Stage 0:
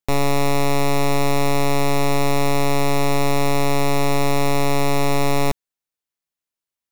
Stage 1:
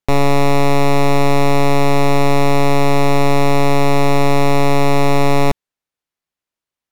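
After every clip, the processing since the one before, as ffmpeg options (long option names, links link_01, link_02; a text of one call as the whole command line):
ffmpeg -i in.wav -af "aemphasis=mode=reproduction:type=cd,volume=5.5dB" out.wav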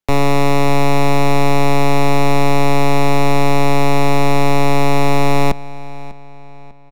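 ffmpeg -i in.wav -filter_complex "[0:a]acrossover=split=220|1100|1700[link_01][link_02][link_03][link_04];[link_02]aeval=exprs='clip(val(0),-1,0.119)':channel_layout=same[link_05];[link_01][link_05][link_03][link_04]amix=inputs=4:normalize=0,asplit=2[link_06][link_07];[link_07]adelay=597,lowpass=frequency=4900:poles=1,volume=-17.5dB,asplit=2[link_08][link_09];[link_09]adelay=597,lowpass=frequency=4900:poles=1,volume=0.43,asplit=2[link_10][link_11];[link_11]adelay=597,lowpass=frequency=4900:poles=1,volume=0.43,asplit=2[link_12][link_13];[link_13]adelay=597,lowpass=frequency=4900:poles=1,volume=0.43[link_14];[link_06][link_08][link_10][link_12][link_14]amix=inputs=5:normalize=0" out.wav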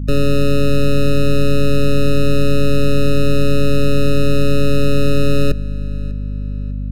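ffmpeg -i in.wav -af "aeval=exprs='val(0)+0.0891*(sin(2*PI*50*n/s)+sin(2*PI*2*50*n/s)/2+sin(2*PI*3*50*n/s)/3+sin(2*PI*4*50*n/s)/4+sin(2*PI*5*50*n/s)/5)':channel_layout=same,afftfilt=real='re*eq(mod(floor(b*sr/1024/610),2),0)':imag='im*eq(mod(floor(b*sr/1024/610),2),0)':win_size=1024:overlap=0.75" out.wav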